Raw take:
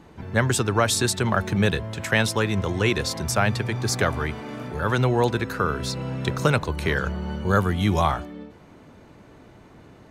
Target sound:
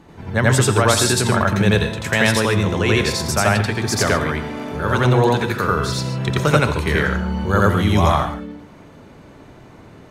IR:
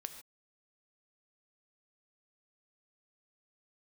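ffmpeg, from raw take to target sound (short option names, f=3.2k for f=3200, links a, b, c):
-filter_complex "[0:a]asplit=2[a][b];[1:a]atrim=start_sample=2205,adelay=86[c];[b][c]afir=irnorm=-1:irlink=0,volume=5.5dB[d];[a][d]amix=inputs=2:normalize=0,volume=1.5dB"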